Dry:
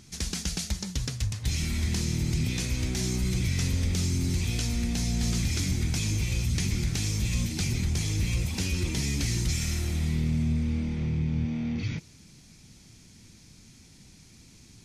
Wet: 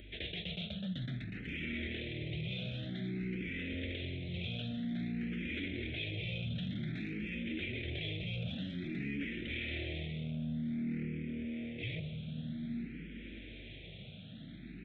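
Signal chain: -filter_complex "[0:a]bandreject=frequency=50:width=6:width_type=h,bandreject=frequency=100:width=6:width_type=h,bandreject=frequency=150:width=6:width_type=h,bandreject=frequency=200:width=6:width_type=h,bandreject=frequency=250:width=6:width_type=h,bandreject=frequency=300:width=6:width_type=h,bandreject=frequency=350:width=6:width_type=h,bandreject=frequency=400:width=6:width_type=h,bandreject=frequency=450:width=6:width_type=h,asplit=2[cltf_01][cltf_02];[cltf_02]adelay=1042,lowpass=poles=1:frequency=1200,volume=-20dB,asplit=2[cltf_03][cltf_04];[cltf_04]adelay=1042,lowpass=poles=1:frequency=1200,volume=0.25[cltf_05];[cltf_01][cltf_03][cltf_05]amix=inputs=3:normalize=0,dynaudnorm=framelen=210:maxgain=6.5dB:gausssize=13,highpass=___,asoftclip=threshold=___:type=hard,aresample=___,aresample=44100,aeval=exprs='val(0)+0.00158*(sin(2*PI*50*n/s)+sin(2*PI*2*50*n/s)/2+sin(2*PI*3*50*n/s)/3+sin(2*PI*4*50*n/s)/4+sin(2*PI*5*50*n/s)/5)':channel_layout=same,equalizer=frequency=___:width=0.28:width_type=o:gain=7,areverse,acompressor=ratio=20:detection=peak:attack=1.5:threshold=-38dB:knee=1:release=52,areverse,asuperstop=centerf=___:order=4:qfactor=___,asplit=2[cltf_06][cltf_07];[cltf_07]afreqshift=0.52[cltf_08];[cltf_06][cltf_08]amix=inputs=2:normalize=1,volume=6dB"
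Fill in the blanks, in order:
190, -20dB, 8000, 620, 1000, 0.89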